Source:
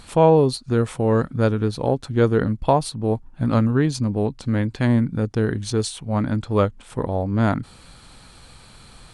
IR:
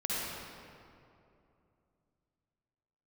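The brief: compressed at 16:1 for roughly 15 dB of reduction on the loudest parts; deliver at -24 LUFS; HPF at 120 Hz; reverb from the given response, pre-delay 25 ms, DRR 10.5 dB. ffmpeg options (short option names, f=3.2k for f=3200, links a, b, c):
-filter_complex "[0:a]highpass=120,acompressor=threshold=-25dB:ratio=16,asplit=2[a][b];[1:a]atrim=start_sample=2205,adelay=25[c];[b][c]afir=irnorm=-1:irlink=0,volume=-17.5dB[d];[a][d]amix=inputs=2:normalize=0,volume=7dB"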